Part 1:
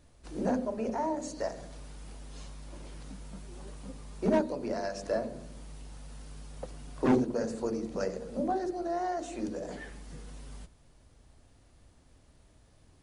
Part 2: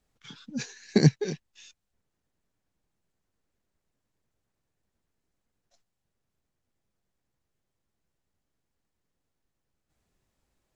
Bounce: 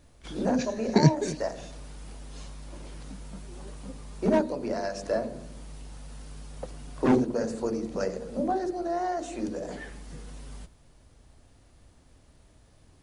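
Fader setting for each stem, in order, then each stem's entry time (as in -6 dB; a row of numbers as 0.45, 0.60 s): +3.0, -0.5 dB; 0.00, 0.00 s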